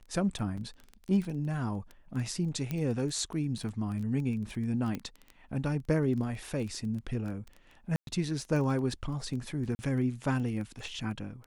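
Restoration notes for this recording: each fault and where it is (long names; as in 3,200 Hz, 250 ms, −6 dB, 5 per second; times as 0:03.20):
surface crackle 12 per second −36 dBFS
0:00.57: drop-out 4.9 ms
0:02.71: click −20 dBFS
0:04.95: click −22 dBFS
0:07.96–0:08.07: drop-out 112 ms
0:09.75–0:09.79: drop-out 40 ms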